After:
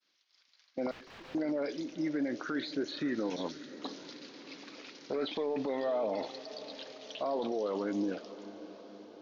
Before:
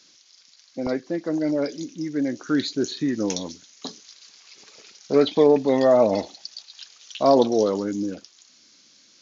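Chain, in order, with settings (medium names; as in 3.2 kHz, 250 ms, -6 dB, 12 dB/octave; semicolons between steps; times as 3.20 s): high-pass 710 Hz 6 dB/octave; expander -47 dBFS; level rider gain up to 6 dB; peak limiter -24.5 dBFS, peak gain reduction 19.5 dB; 0.91–1.35 s: integer overflow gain 40.5 dB; distance through air 260 m; on a send: echo that smears into a reverb 594 ms, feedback 64%, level -15 dB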